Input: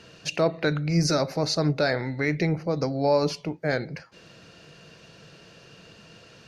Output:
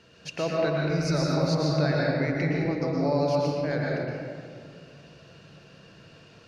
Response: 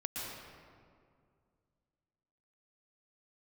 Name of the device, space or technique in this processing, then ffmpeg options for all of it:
swimming-pool hall: -filter_complex "[1:a]atrim=start_sample=2205[s0];[0:a][s0]afir=irnorm=-1:irlink=0,highshelf=f=5200:g=-4.5,volume=0.668"

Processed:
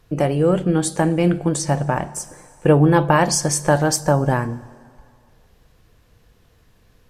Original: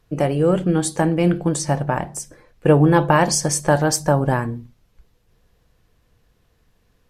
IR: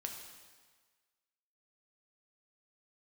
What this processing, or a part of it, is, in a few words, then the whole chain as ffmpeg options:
ducked reverb: -filter_complex "[0:a]asplit=3[s0][s1][s2];[1:a]atrim=start_sample=2205[s3];[s1][s3]afir=irnorm=-1:irlink=0[s4];[s2]apad=whole_len=312833[s5];[s4][s5]sidechaincompress=threshold=0.0141:ratio=3:attack=27:release=742,volume=1.68[s6];[s0][s6]amix=inputs=2:normalize=0,volume=0.891"

